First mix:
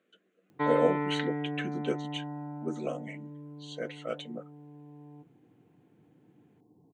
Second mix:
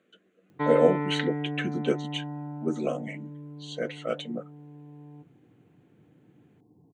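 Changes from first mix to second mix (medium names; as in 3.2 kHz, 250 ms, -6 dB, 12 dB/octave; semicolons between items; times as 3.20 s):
speech +4.5 dB; master: add bass shelf 140 Hz +9 dB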